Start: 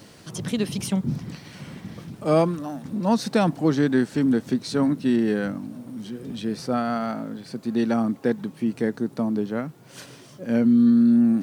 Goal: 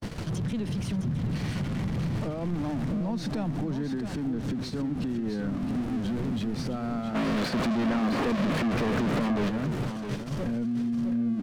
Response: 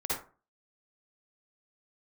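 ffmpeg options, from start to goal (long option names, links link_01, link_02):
-filter_complex "[0:a]aeval=exprs='val(0)+0.5*0.0531*sgn(val(0))':channel_layout=same,aemphasis=mode=reproduction:type=bsi,agate=range=-57dB:threshold=-25dB:ratio=16:detection=peak,acompressor=threshold=-26dB:ratio=3,alimiter=limit=-24dB:level=0:latency=1:release=83,acrossover=split=240[link_01][link_02];[link_02]acompressor=threshold=-30dB:ratio=6[link_03];[link_01][link_03]amix=inputs=2:normalize=0,asplit=3[link_04][link_05][link_06];[link_04]afade=type=out:start_time=7.14:duration=0.02[link_07];[link_05]asplit=2[link_08][link_09];[link_09]highpass=frequency=720:poles=1,volume=32dB,asoftclip=type=tanh:threshold=-20.5dB[link_10];[link_08][link_10]amix=inputs=2:normalize=0,lowpass=frequency=2400:poles=1,volume=-6dB,afade=type=in:start_time=7.14:duration=0.02,afade=type=out:start_time=9.48:duration=0.02[link_11];[link_06]afade=type=in:start_time=9.48:duration=0.02[link_12];[link_07][link_11][link_12]amix=inputs=3:normalize=0,aecho=1:1:662:0.376"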